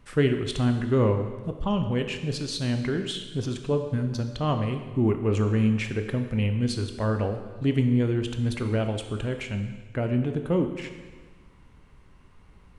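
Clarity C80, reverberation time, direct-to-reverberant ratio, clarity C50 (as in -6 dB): 9.5 dB, 1.4 s, 6.0 dB, 8.0 dB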